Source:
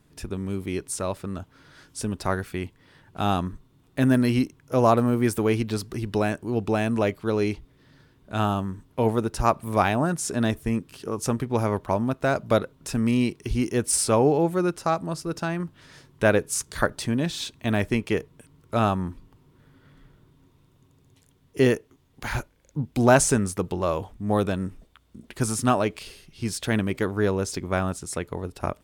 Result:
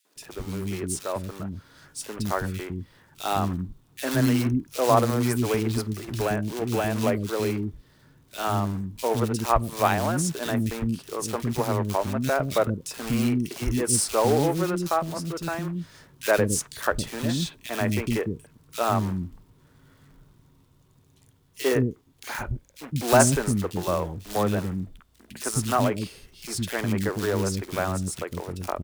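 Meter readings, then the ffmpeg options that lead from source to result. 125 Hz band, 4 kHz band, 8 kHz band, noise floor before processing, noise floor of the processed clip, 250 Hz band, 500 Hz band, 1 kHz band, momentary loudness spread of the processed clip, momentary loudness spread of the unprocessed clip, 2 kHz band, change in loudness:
0.0 dB, +1.0 dB, +1.0 dB, −61 dBFS, −60 dBFS, −2.0 dB, −1.0 dB, 0.0 dB, 13 LU, 12 LU, −1.0 dB, −1.0 dB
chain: -filter_complex "[0:a]acrusher=bits=3:mode=log:mix=0:aa=0.000001,acrossover=split=320|2400[link_01][link_02][link_03];[link_02]adelay=50[link_04];[link_01]adelay=160[link_05];[link_05][link_04][link_03]amix=inputs=3:normalize=0"

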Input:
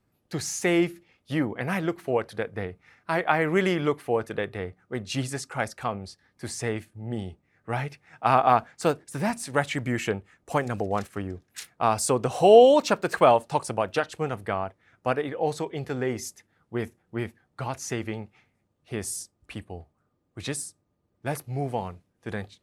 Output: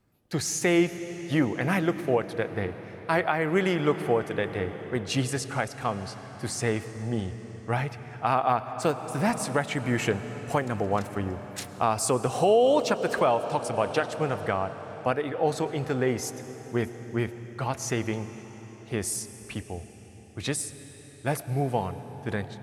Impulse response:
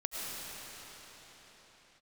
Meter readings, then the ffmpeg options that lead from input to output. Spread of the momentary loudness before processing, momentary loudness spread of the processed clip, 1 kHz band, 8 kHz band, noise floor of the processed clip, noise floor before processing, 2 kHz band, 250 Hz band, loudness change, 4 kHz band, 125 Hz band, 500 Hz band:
16 LU, 12 LU, −2.5 dB, +1.5 dB, −47 dBFS, −73 dBFS, 0.0 dB, +1.0 dB, −1.5 dB, 0.0 dB, +2.0 dB, −2.0 dB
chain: -filter_complex "[0:a]asplit=2[link_01][link_02];[1:a]atrim=start_sample=2205,lowshelf=frequency=180:gain=6[link_03];[link_02][link_03]afir=irnorm=-1:irlink=0,volume=-15dB[link_04];[link_01][link_04]amix=inputs=2:normalize=0,alimiter=limit=-13dB:level=0:latency=1:release=495,volume=1dB"

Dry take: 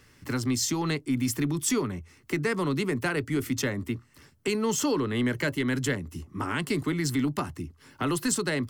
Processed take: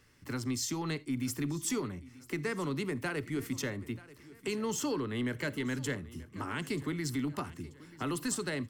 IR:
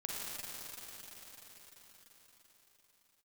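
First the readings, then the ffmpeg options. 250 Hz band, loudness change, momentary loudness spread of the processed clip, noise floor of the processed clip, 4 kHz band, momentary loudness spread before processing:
−7.0 dB, −7.0 dB, 8 LU, −57 dBFS, −7.0 dB, 8 LU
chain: -filter_complex "[0:a]aecho=1:1:934|1868|2802:0.112|0.0494|0.0217,asplit=2[link_01][link_02];[1:a]atrim=start_sample=2205,atrim=end_sample=3969[link_03];[link_02][link_03]afir=irnorm=-1:irlink=0,volume=-11.5dB[link_04];[link_01][link_04]amix=inputs=2:normalize=0,volume=-8.5dB"

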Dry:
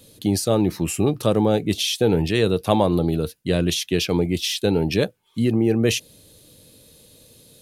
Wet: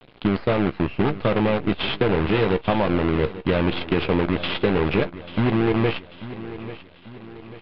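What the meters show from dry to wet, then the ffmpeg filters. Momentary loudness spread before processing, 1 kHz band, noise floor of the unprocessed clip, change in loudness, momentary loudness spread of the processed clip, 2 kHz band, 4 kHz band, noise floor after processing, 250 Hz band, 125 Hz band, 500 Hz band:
5 LU, +2.5 dB, −53 dBFS, −1.0 dB, 15 LU, +4.0 dB, −4.5 dB, −48 dBFS, −1.0 dB, −1.5 dB, −1.0 dB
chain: -filter_complex "[0:a]acompressor=threshold=-21dB:ratio=8,aresample=11025,acrusher=bits=5:dc=4:mix=0:aa=0.000001,aresample=44100,aecho=1:1:841|1682|2523|3364:0.188|0.0885|0.0416|0.0196,acrusher=bits=7:mode=log:mix=0:aa=0.000001,lowpass=frequency=2900:width=0.5412,lowpass=frequency=2900:width=1.3066,bandreject=frequency=1800:width=25,asplit=2[link_01][link_02];[link_02]adelay=15,volume=-10.5dB[link_03];[link_01][link_03]amix=inputs=2:normalize=0,volume=4.5dB"

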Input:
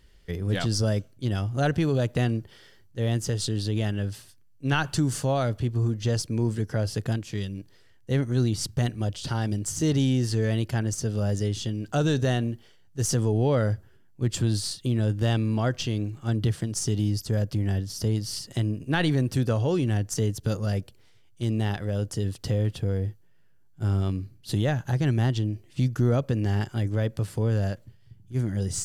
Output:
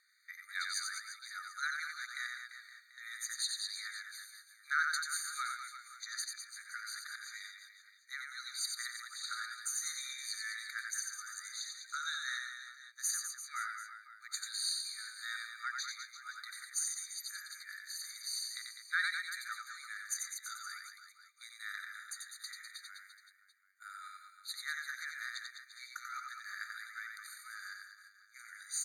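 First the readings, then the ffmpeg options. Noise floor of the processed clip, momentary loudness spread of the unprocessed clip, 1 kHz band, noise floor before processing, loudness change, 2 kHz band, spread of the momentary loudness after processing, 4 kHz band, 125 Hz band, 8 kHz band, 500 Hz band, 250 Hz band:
−64 dBFS, 7 LU, −8.5 dB, −55 dBFS, −13.0 dB, −1.0 dB, 15 LU, −5.0 dB, below −40 dB, −3.0 dB, below −40 dB, below −40 dB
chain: -af "aecho=1:1:90|202.5|343.1|518.9|738.6:0.631|0.398|0.251|0.158|0.1,afftfilt=real='re*eq(mod(floor(b*sr/1024/1200),2),1)':imag='im*eq(mod(floor(b*sr/1024/1200),2),1)':win_size=1024:overlap=0.75,volume=-2.5dB"

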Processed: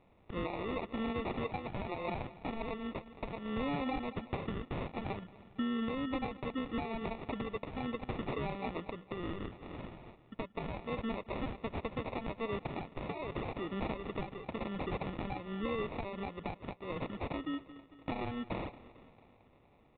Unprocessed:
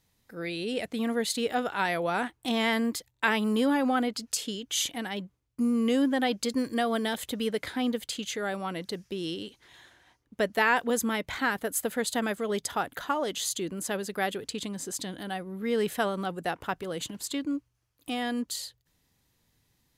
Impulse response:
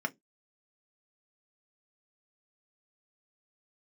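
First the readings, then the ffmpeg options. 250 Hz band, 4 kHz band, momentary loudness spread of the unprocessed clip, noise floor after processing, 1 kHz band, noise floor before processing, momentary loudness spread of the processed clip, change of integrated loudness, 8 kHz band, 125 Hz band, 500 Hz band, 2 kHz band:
−9.0 dB, −15.5 dB, 10 LU, −64 dBFS, −9.0 dB, −74 dBFS, 7 LU, −10.0 dB, below −40 dB, +0.5 dB, −8.5 dB, −13.5 dB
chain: -af "equalizer=frequency=2300:width=0.43:gain=10,acompressor=threshold=-35dB:ratio=5,aecho=1:1:225|450|675|900|1125:0.133|0.072|0.0389|0.021|0.0113,acrusher=samples=28:mix=1:aa=0.000001,aresample=8000,aresample=44100,alimiter=level_in=3.5dB:limit=-24dB:level=0:latency=1:release=383,volume=-3.5dB,volume=1.5dB"

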